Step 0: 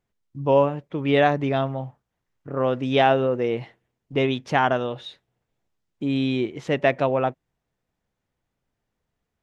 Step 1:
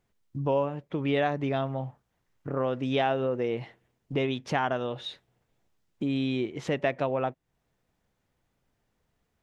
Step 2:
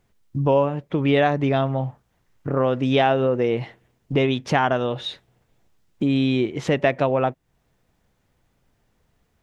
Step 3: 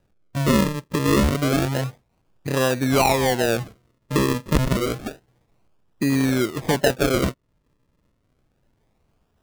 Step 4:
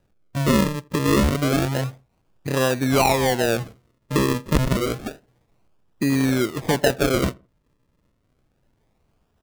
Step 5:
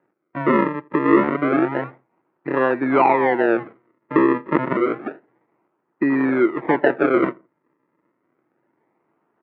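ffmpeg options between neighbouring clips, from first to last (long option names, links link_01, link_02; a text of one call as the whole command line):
ffmpeg -i in.wav -af "acompressor=threshold=-37dB:ratio=2,volume=4dB" out.wav
ffmpeg -i in.wav -af "lowshelf=frequency=130:gain=3.5,volume=7.5dB" out.wav
ffmpeg -i in.wav -af "acrusher=samples=40:mix=1:aa=0.000001:lfo=1:lforange=40:lforate=0.29" out.wav
ffmpeg -i in.wav -filter_complex "[0:a]asplit=2[link_01][link_02];[link_02]adelay=83,lowpass=frequency=1500:poles=1,volume=-24dB,asplit=2[link_03][link_04];[link_04]adelay=83,lowpass=frequency=1500:poles=1,volume=0.27[link_05];[link_01][link_03][link_05]amix=inputs=3:normalize=0" out.wav
ffmpeg -i in.wav -af "highpass=frequency=180:width=0.5412,highpass=frequency=180:width=1.3066,equalizer=frequency=200:width_type=q:width=4:gain=-5,equalizer=frequency=340:width_type=q:width=4:gain=10,equalizer=frequency=930:width_type=q:width=4:gain=7,equalizer=frequency=1300:width_type=q:width=4:gain=5,equalizer=frequency=2000:width_type=q:width=4:gain=7,lowpass=frequency=2100:width=0.5412,lowpass=frequency=2100:width=1.3066" out.wav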